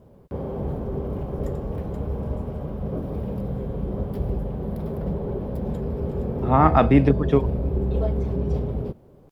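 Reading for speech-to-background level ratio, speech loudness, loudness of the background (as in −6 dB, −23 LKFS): 8.5 dB, −19.5 LKFS, −28.0 LKFS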